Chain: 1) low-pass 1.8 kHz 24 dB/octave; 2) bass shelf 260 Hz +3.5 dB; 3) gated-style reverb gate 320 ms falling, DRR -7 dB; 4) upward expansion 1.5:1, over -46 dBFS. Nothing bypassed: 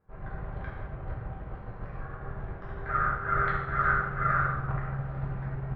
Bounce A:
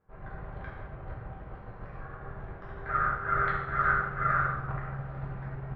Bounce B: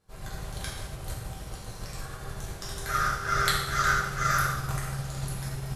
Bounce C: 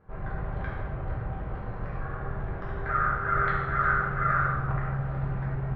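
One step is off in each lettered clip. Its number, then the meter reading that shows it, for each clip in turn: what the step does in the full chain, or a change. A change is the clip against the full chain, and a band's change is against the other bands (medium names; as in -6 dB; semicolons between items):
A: 2, momentary loudness spread change +3 LU; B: 1, 2 kHz band +1.5 dB; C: 4, momentary loudness spread change -4 LU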